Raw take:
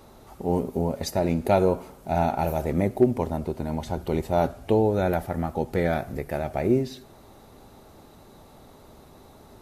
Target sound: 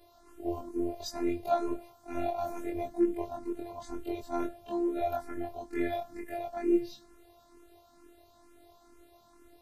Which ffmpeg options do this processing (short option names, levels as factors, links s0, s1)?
-filter_complex "[0:a]afftfilt=real='re':imag='-im':win_size=2048:overlap=0.75,afftfilt=real='hypot(re,im)*cos(PI*b)':imag='0':win_size=512:overlap=0.75,asplit=2[s0][s1];[s1]afreqshift=2.2[s2];[s0][s2]amix=inputs=2:normalize=1,volume=1.26"